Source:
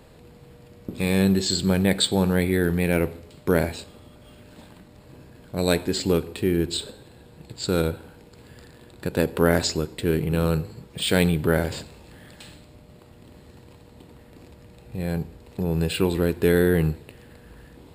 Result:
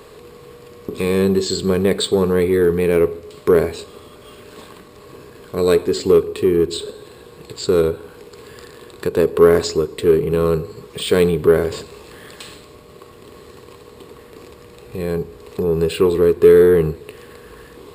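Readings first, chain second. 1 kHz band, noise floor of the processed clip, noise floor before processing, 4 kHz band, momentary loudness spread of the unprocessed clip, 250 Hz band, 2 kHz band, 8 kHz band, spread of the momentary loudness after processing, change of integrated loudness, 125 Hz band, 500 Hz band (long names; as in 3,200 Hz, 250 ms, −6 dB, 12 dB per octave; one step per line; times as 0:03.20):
+4.0 dB, −43 dBFS, −50 dBFS, +0.5 dB, 14 LU, +2.5 dB, 0.0 dB, +0.5 dB, 18 LU, +6.5 dB, 0.0 dB, +10.5 dB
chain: hollow resonant body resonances 420/1,100 Hz, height 15 dB, ringing for 40 ms
in parallel at −8 dB: soft clipping −13.5 dBFS, distortion −9 dB
on the sum: one half of a high-frequency compander encoder only
level −2.5 dB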